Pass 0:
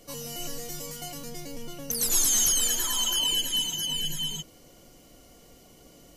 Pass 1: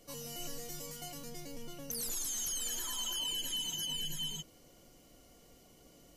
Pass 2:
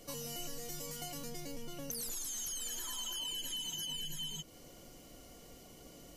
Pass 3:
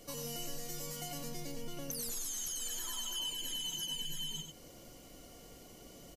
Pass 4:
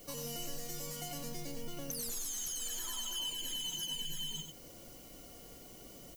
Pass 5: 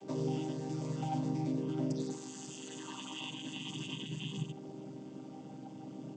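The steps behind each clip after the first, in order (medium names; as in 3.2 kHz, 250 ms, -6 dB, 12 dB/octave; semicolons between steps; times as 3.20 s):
peak limiter -21.5 dBFS, peak gain reduction 10 dB; trim -7 dB
compression 3:1, threshold -46 dBFS, peak gain reduction 9.5 dB; trim +5.5 dB
delay 94 ms -6.5 dB
added noise violet -58 dBFS
vocoder on a held chord minor triad, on C3; small resonant body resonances 280/820 Hz, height 12 dB, ringing for 25 ms; trim +1 dB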